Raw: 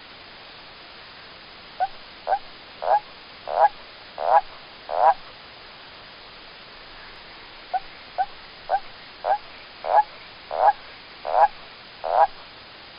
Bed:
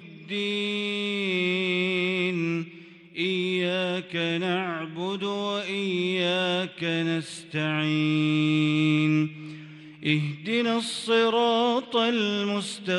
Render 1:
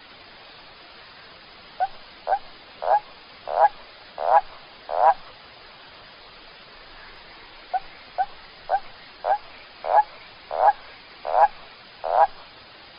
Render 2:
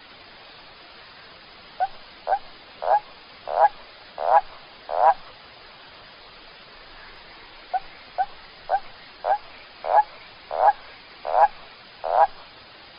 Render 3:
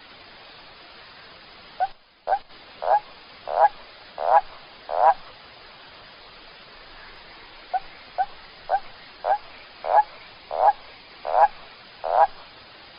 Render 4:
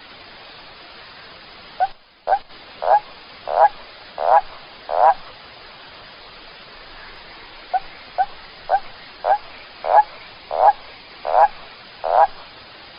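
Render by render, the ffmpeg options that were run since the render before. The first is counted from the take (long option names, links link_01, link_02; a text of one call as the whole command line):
ffmpeg -i in.wav -af "afftdn=noise_reduction=6:noise_floor=-44" out.wav
ffmpeg -i in.wav -af anull out.wav
ffmpeg -i in.wav -filter_complex "[0:a]asplit=3[link_01][link_02][link_03];[link_01]afade=type=out:start_time=1.83:duration=0.02[link_04];[link_02]agate=range=-11dB:threshold=-38dB:ratio=16:release=100:detection=peak,afade=type=in:start_time=1.83:duration=0.02,afade=type=out:start_time=2.49:duration=0.02[link_05];[link_03]afade=type=in:start_time=2.49:duration=0.02[link_06];[link_04][link_05][link_06]amix=inputs=3:normalize=0,asettb=1/sr,asplit=3[link_07][link_08][link_09];[link_07]atrim=end=10.384[link_10];[link_08]atrim=start=10.38:end=11.13,asetpts=PTS-STARTPTS,afade=type=in:duration=0.004:curve=qsin,afade=type=out:start_time=0.746:duration=0.004:curve=qsin,equalizer=frequency=1500:width_type=o:width=0.48:gain=-5.5[link_11];[link_09]atrim=start=11.126[link_12];[link_10][link_11]acrossfade=duration=0.004:curve1=hsin:curve2=qsin[link_13];[link_13][link_12]acrossfade=duration=0.004:curve1=qsin:curve2=hsin" out.wav
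ffmpeg -i in.wav -af "volume=5dB,alimiter=limit=-3dB:level=0:latency=1" out.wav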